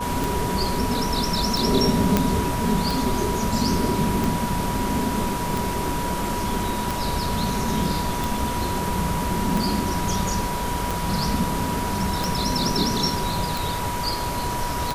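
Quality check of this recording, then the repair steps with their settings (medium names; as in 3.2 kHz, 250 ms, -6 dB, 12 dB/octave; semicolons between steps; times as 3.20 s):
tick 45 rpm
whine 970 Hz -28 dBFS
2.17 s: pop -3 dBFS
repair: de-click; band-stop 970 Hz, Q 30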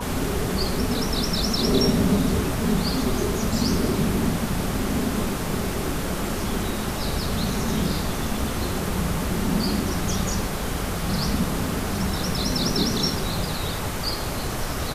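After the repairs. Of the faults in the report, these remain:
nothing left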